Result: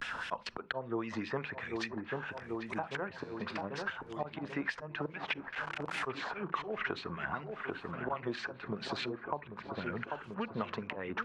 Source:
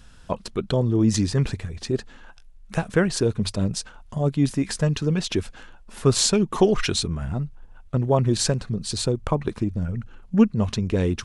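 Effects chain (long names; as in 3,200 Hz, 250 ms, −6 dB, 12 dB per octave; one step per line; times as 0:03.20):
0:05.07–0:06.02: linear delta modulator 64 kbit/s, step −36 dBFS
treble cut that deepens with the level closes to 1,600 Hz, closed at −19.5 dBFS
low-shelf EQ 160 Hz −2.5 dB
volume swells 290 ms
auto-filter band-pass sine 4.9 Hz 880–2,500 Hz
pitch vibrato 0.3 Hz 50 cents
0:03.09–0:03.61: tuned comb filter 85 Hz, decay 0.78 s, harmonics all, mix 70%
delay with a low-pass on its return 790 ms, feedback 56%, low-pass 1,200 Hz, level −9.5 dB
on a send at −21 dB: convolution reverb RT60 0.20 s, pre-delay 34 ms
on the sum: multiband upward and downward compressor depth 100%
level +8.5 dB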